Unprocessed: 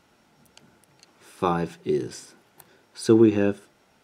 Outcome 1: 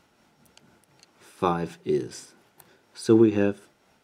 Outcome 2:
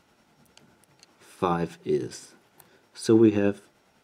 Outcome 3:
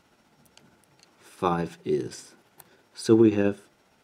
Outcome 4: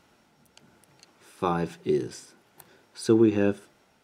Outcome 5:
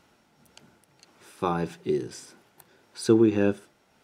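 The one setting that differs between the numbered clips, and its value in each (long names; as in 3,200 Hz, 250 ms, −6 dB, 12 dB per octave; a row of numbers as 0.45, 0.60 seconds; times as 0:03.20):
amplitude tremolo, speed: 4.1, 9.8, 15, 1.1, 1.7 Hertz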